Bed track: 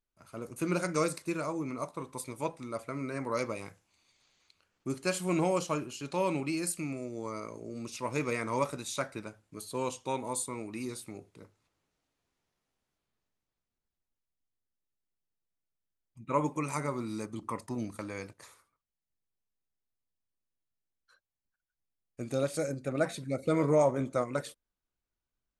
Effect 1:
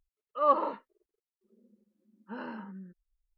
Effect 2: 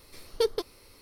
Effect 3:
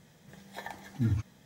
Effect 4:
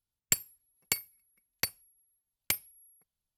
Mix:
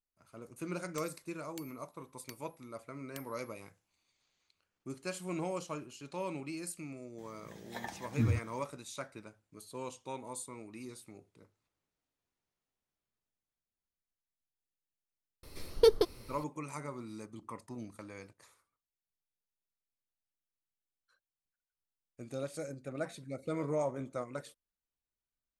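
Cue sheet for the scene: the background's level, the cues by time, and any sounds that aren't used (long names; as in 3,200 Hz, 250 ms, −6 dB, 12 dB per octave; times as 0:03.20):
bed track −8.5 dB
0:00.66: mix in 4 −5.5 dB + downward compressor, threshold −41 dBFS
0:07.18: mix in 3 −1.5 dB
0:15.43: mix in 2 −1 dB + low-shelf EQ 460 Hz +7.5 dB
not used: 1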